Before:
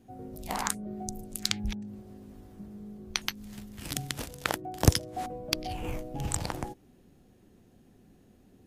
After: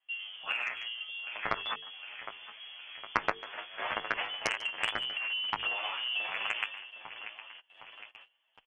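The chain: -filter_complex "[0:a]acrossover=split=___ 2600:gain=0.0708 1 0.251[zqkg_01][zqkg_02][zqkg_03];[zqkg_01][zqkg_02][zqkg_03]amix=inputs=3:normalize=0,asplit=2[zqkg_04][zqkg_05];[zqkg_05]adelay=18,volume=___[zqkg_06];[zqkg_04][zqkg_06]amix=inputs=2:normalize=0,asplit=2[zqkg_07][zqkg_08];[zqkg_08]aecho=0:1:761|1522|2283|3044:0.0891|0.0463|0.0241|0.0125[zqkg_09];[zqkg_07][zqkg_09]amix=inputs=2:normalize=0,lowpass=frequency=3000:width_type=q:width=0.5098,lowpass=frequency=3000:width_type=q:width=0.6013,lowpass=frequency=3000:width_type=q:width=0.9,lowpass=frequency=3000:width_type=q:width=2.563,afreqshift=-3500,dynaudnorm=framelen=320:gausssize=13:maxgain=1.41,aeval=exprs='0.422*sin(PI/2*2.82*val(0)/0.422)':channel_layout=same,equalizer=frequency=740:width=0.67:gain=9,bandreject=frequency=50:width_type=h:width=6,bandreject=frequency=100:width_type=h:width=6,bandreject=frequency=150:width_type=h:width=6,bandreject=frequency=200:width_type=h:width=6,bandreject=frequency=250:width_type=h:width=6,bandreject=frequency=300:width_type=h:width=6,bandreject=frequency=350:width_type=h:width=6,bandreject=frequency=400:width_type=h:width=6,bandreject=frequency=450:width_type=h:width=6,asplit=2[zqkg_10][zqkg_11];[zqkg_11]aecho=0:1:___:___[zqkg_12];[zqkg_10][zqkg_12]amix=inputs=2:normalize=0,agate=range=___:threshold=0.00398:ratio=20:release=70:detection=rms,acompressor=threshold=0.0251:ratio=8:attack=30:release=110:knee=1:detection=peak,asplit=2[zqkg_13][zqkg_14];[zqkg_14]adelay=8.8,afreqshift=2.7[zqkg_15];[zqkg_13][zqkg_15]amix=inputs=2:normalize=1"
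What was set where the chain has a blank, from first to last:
540, 0.422, 145, 0.075, 0.1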